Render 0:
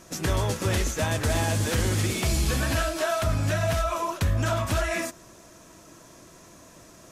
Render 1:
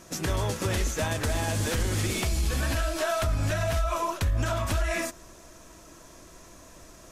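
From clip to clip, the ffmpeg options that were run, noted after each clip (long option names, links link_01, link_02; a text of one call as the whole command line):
ffmpeg -i in.wav -af "asubboost=boost=5:cutoff=56,alimiter=limit=-18dB:level=0:latency=1:release=92" out.wav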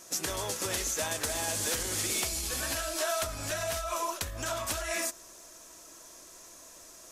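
ffmpeg -i in.wav -af "bass=frequency=250:gain=-12,treble=frequency=4000:gain=9,volume=-4dB" out.wav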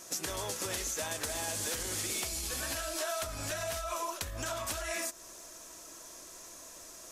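ffmpeg -i in.wav -af "acompressor=threshold=-38dB:ratio=2,volume=1.5dB" out.wav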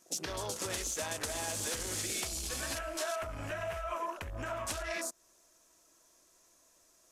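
ffmpeg -i in.wav -af "afwtdn=0.00708" out.wav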